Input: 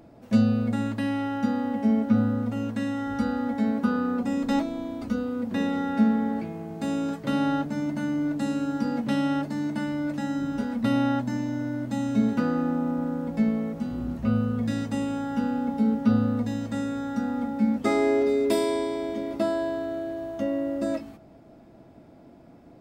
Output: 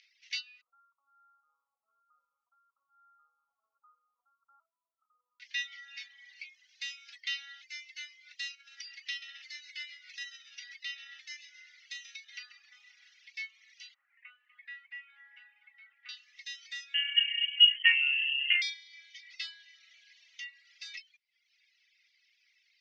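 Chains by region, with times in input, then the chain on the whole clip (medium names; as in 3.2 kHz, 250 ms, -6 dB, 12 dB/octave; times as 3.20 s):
0.61–5.40 s: brick-wall FIR low-pass 1.4 kHz + flutter echo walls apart 9.4 m, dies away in 0.42 s
8.54–12.72 s: compression 3:1, threshold -26 dBFS + frequency-shifting echo 134 ms, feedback 47%, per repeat -78 Hz, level -10 dB
13.94–16.09 s: low-pass 1.9 kHz 24 dB/octave + dynamic bell 730 Hz, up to +6 dB, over -46 dBFS, Q 1.5 + delay 246 ms -11 dB
16.94–18.62 s: FFT filter 130 Hz 0 dB, 660 Hz -15 dB, 1.3 kHz +11 dB + frequency inversion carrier 3.1 kHz
whole clip: reverb removal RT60 0.62 s; Chebyshev band-pass 2–6 kHz, order 4; reverb removal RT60 1.1 s; trim +8.5 dB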